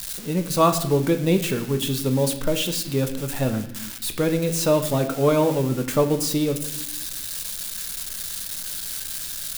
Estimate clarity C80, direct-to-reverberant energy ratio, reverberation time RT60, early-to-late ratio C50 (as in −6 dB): 12.5 dB, 6.5 dB, non-exponential decay, 10.5 dB